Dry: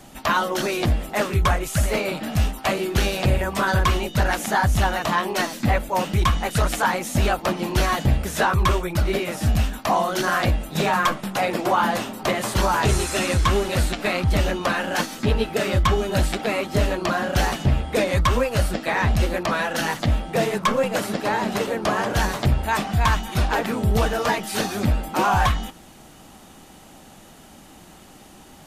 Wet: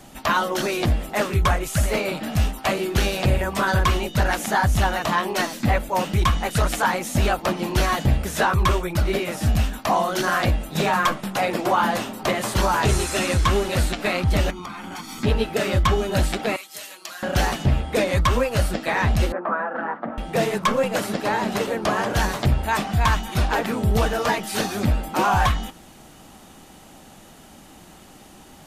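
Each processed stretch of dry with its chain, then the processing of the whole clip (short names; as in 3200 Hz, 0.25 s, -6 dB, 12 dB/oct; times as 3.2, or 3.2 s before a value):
14.5–15.23 comb 0.9 ms, depth 78% + compressor 12:1, threshold -30 dBFS
16.56–17.23 HPF 130 Hz 6 dB/oct + differentiator + comb 6.2 ms, depth 39%
19.32–20.18 elliptic band-pass 210–1400 Hz, stop band 70 dB + tilt shelf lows -4.5 dB, about 810 Hz
whole clip: dry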